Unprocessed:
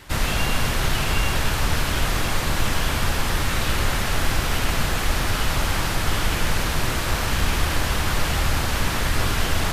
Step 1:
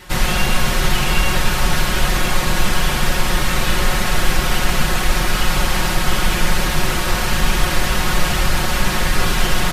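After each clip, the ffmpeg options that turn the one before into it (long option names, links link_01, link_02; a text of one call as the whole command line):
ffmpeg -i in.wav -af "aecho=1:1:5.5:0.75,volume=3dB" out.wav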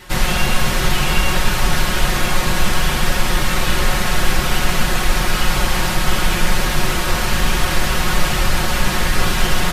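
ffmpeg -i in.wav -af "flanger=delay=7.8:depth=9.9:regen=-68:speed=0.6:shape=triangular,volume=4.5dB" out.wav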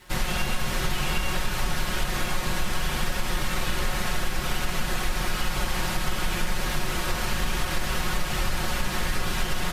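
ffmpeg -i in.wav -af "acompressor=threshold=-12dB:ratio=6,aeval=exprs='sgn(val(0))*max(abs(val(0))-0.00447,0)':channel_layout=same,volume=-7.5dB" out.wav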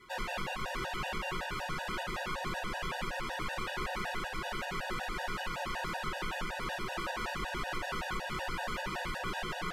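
ffmpeg -i in.wav -filter_complex "[0:a]asplit=2[link_01][link_02];[link_02]highpass=frequency=720:poles=1,volume=19dB,asoftclip=type=tanh:threshold=-11dB[link_03];[link_01][link_03]amix=inputs=2:normalize=0,lowpass=frequency=1200:poles=1,volume=-6dB,afftfilt=real='re*gt(sin(2*PI*5.3*pts/sr)*(1-2*mod(floor(b*sr/1024/490),2)),0)':imag='im*gt(sin(2*PI*5.3*pts/sr)*(1-2*mod(floor(b*sr/1024/490),2)),0)':win_size=1024:overlap=0.75,volume=-8.5dB" out.wav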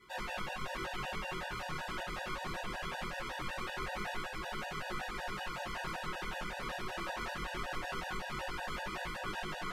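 ffmpeg -i in.wav -af "flanger=delay=19:depth=7.7:speed=0.22" out.wav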